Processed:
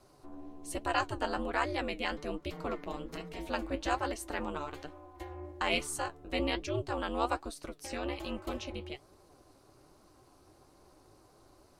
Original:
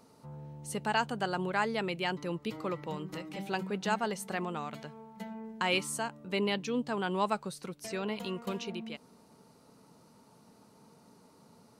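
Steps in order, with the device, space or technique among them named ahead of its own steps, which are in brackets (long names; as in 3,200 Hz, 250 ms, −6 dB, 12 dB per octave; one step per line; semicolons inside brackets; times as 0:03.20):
alien voice (ring modulation 140 Hz; flanger 1.2 Hz, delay 4.3 ms, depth 6.9 ms, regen +62%)
level +6 dB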